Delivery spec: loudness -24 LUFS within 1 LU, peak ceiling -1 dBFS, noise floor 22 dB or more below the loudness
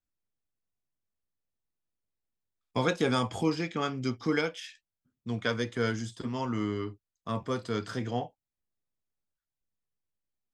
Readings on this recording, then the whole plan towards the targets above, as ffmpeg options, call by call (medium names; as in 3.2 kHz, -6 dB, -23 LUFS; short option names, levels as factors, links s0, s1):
loudness -32.0 LUFS; peak level -14.5 dBFS; loudness target -24.0 LUFS
-> -af "volume=2.51"